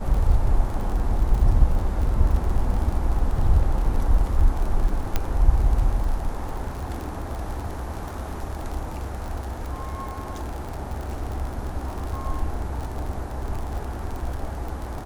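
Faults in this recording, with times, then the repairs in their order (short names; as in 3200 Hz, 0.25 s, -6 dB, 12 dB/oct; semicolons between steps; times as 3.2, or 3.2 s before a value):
crackle 47/s -29 dBFS
5.16 pop -8 dBFS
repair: de-click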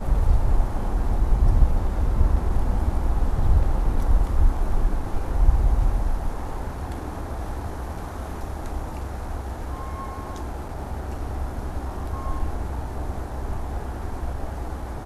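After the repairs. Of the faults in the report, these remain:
none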